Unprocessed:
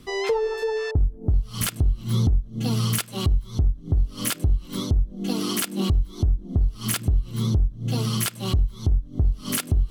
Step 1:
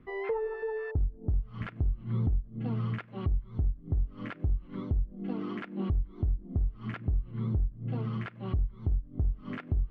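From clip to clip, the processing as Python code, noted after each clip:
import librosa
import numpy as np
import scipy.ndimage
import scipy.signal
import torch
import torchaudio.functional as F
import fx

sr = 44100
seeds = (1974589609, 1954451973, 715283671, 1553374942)

y = scipy.signal.sosfilt(scipy.signal.cheby1(3, 1.0, 2000.0, 'lowpass', fs=sr, output='sos'), x)
y = y * librosa.db_to_amplitude(-8.0)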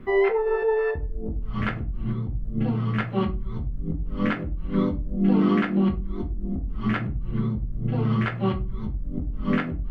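y = fx.over_compress(x, sr, threshold_db=-34.0, ratio=-1.0)
y = fx.room_shoebox(y, sr, seeds[0], volume_m3=140.0, walls='furnished', distance_m=1.1)
y = y * librosa.db_to_amplitude(7.5)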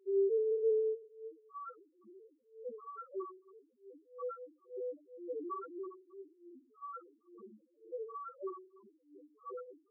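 y = fx.cabinet(x, sr, low_hz=370.0, low_slope=24, high_hz=3000.0, hz=(510.0, 740.0, 1100.0, 1600.0, 2300.0), db=(6, -9, 5, -4, 4))
y = fx.spec_topn(y, sr, count=1)
y = y * librosa.db_to_amplitude(-4.0)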